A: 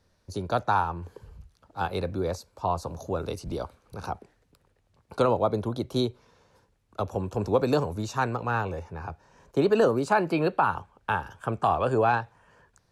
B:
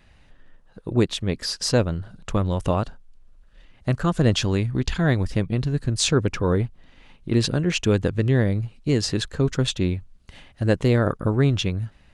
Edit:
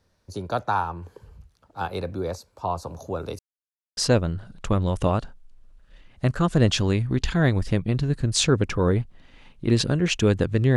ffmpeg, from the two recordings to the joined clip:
-filter_complex "[0:a]apad=whole_dur=10.76,atrim=end=10.76,asplit=2[a][b];[a]atrim=end=3.39,asetpts=PTS-STARTPTS,afade=t=out:st=3.386:d=0.004:c=hsin[c];[b]atrim=start=3.39:end=3.97,asetpts=PTS-STARTPTS,volume=0[d];[1:a]atrim=start=1.61:end=8.4,asetpts=PTS-STARTPTS,afade=t=in:d=0.004:c=hsin[e];[c][d][e]concat=n=3:v=0:a=1"

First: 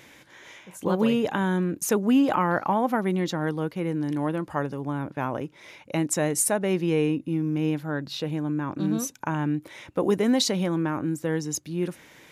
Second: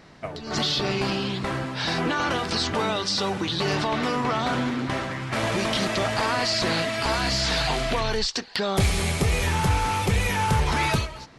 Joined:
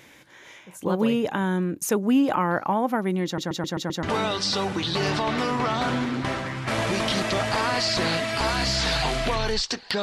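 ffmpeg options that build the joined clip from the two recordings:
-filter_complex "[0:a]apad=whole_dur=10.02,atrim=end=10.02,asplit=6[a][b][c][d][e][f];[a]atrim=end=3.382[g];[b]atrim=start=3.248:end=3.382[h];[c]atrim=start=3.248:end=3.382[i];[d]atrim=start=3.248:end=3.382[j];[e]atrim=start=3.248:end=3.382[k];[f]atrim=start=3.248:end=3.382[l];[1:a]atrim=start=2.678:end=8.67[m];[g][h]acrossfade=d=0.004:c1=hsin:c2=hsin[n];[n][i]acrossfade=d=0.004:c1=hsin:c2=hsin[o];[o][j]acrossfade=d=0.004:c1=hsin:c2=hsin[p];[p][k]acrossfade=d=0.004:c1=hsin:c2=hsin[q];[q][l]acrossfade=d=0.004:c1=hsin:c2=hsin[r];[r][m]acrossfade=d=0.004:c1=hsin:c2=hsin"

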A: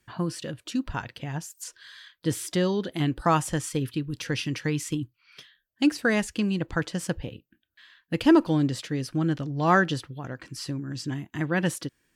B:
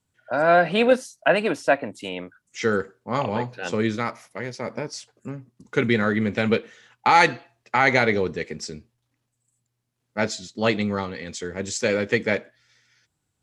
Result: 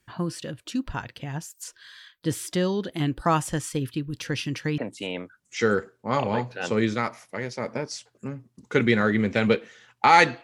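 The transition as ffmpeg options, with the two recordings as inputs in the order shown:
-filter_complex "[0:a]apad=whole_dur=10.43,atrim=end=10.43,atrim=end=4.782[a];[1:a]atrim=start=1.798:end=7.45[b];[a][b]acrossfade=d=0.004:c1=hsin:c2=hsin"

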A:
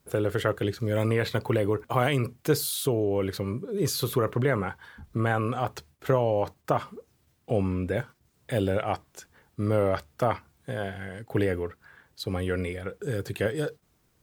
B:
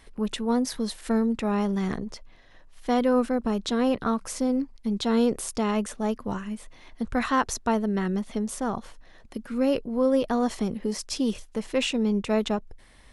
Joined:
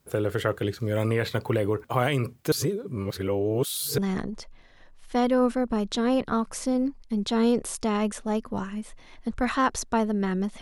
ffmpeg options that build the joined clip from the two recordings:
-filter_complex "[0:a]apad=whole_dur=10.61,atrim=end=10.61,asplit=2[a][b];[a]atrim=end=2.522[c];[b]atrim=start=2.518:end=3.982,asetpts=PTS-STARTPTS,areverse[d];[1:a]atrim=start=1.718:end=8.35[e];[c][d]acrossfade=d=0.004:c1=hsin:c2=hsin[f];[f][e]acrossfade=d=0.004:c1=hsin:c2=hsin"

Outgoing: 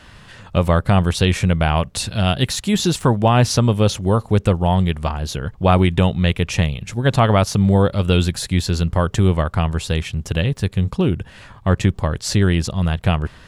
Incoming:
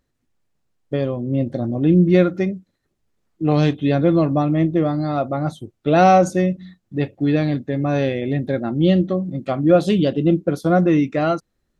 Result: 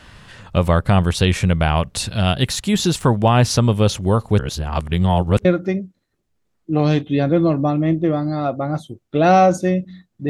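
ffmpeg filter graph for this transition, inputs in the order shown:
-filter_complex "[0:a]apad=whole_dur=10.29,atrim=end=10.29,asplit=2[a][b];[a]atrim=end=4.392[c];[b]atrim=start=4.388:end=5.452,asetpts=PTS-STARTPTS,areverse[d];[1:a]atrim=start=2.168:end=7.01[e];[c][d]acrossfade=d=0.004:c1=hsin:c2=hsin[f];[f][e]acrossfade=d=0.004:c1=hsin:c2=hsin"

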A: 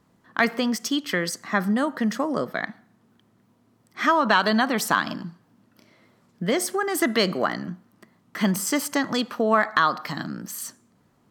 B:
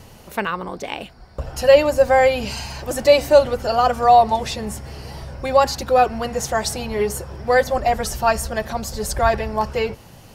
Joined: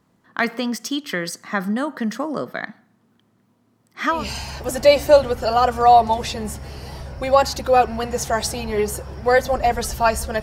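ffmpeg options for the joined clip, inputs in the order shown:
-filter_complex "[0:a]apad=whole_dur=10.42,atrim=end=10.42,atrim=end=4.27,asetpts=PTS-STARTPTS[a];[1:a]atrim=start=2.31:end=8.64,asetpts=PTS-STARTPTS[b];[a][b]acrossfade=d=0.18:c1=tri:c2=tri"

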